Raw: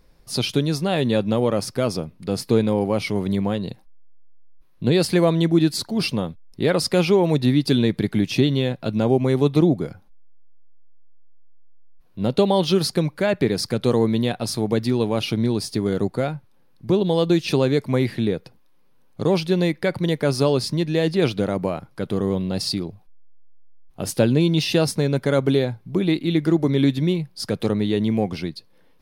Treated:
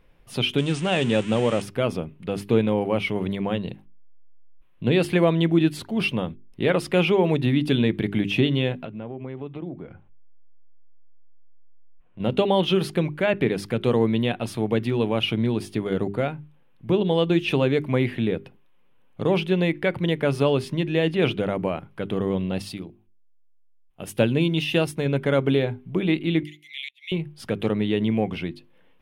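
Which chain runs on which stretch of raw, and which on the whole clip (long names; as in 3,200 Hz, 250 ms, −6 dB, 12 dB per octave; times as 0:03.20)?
0:00.58–0:01.62: spike at every zero crossing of −15.5 dBFS + linear-phase brick-wall low-pass 9,400 Hz
0:08.85–0:12.20: low-pass filter 2,500 Hz + downward compressor 2.5 to 1, threshold −35 dBFS
0:22.62–0:25.06: high-shelf EQ 5,400 Hz +7.5 dB + expander for the loud parts, over −36 dBFS
0:26.43–0:27.12: Butterworth high-pass 2,000 Hz 96 dB per octave + gate with flip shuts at −21 dBFS, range −26 dB
whole clip: high shelf with overshoot 3,700 Hz −7.5 dB, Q 3; mains-hum notches 50/100/150/200/250/300/350/400 Hz; level −1.5 dB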